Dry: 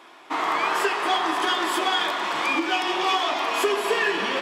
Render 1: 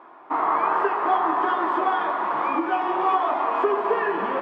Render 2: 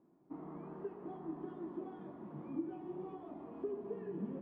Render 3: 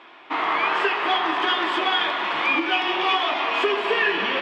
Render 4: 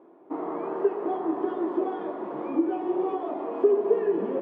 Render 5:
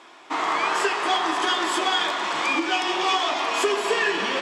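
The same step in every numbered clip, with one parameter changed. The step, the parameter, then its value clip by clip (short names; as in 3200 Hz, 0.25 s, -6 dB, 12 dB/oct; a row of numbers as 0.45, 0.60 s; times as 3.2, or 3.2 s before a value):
synth low-pass, frequency: 1100, 150, 2900, 430, 7700 Hz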